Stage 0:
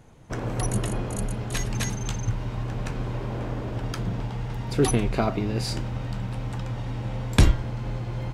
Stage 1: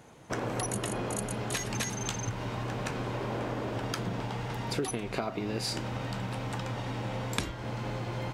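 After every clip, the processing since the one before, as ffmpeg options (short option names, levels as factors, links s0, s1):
-af "highpass=f=310:p=1,acompressor=threshold=0.0251:ratio=12,volume=1.5"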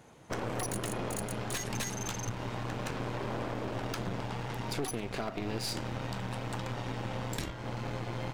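-af "aeval=exprs='0.316*(cos(1*acos(clip(val(0)/0.316,-1,1)))-cos(1*PI/2))+0.0501*(cos(8*acos(clip(val(0)/0.316,-1,1)))-cos(8*PI/2))':c=same,asoftclip=type=hard:threshold=0.0708,volume=0.75"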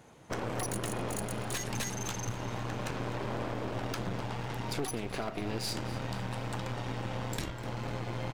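-af "aecho=1:1:251|502|753|1004|1255:0.158|0.0808|0.0412|0.021|0.0107"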